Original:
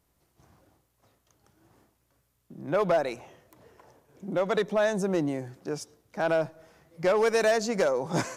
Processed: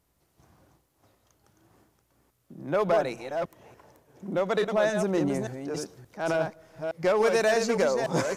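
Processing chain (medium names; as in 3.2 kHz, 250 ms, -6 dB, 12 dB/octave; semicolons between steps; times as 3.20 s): chunks repeated in reverse 288 ms, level -6 dB; 5.15–6.40 s: transient shaper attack -6 dB, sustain +5 dB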